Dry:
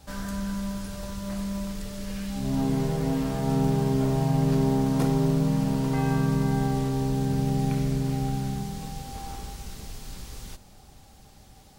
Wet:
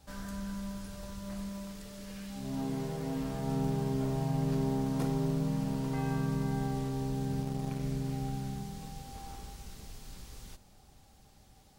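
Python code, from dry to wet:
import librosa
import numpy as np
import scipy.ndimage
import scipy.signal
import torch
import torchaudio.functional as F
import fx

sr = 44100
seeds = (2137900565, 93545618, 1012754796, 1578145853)

y = fx.low_shelf(x, sr, hz=110.0, db=-8.0, at=(1.49, 3.16))
y = fx.power_curve(y, sr, exponent=1.4, at=(7.42, 7.83))
y = y * librosa.db_to_amplitude(-8.0)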